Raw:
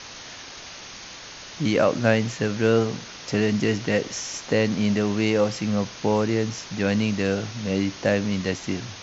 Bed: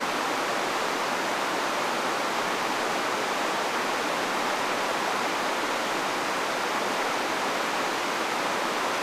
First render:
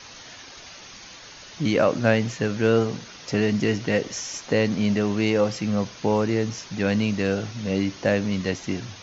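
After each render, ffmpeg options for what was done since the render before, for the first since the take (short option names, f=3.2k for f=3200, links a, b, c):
-af "afftdn=nr=6:nf=-41"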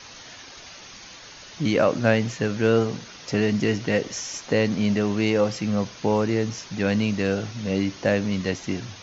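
-af anull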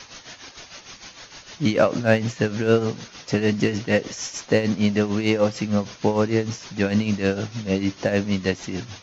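-filter_complex "[0:a]asplit=2[a][b];[b]asoftclip=type=hard:threshold=-12.5dB,volume=-4dB[c];[a][c]amix=inputs=2:normalize=0,tremolo=f=6.6:d=0.69"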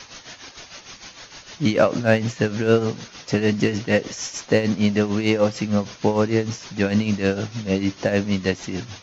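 -af "volume=1dB,alimiter=limit=-3dB:level=0:latency=1"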